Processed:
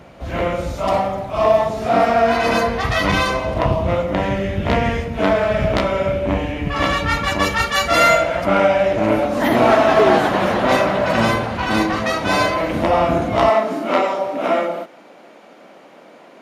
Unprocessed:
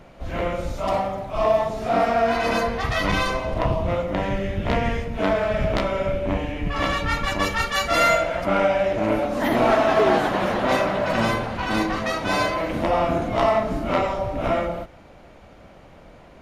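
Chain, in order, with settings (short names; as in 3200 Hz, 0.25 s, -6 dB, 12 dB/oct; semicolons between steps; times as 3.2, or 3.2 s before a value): HPF 49 Hz 24 dB/oct, from 13.5 s 230 Hz; gain +5 dB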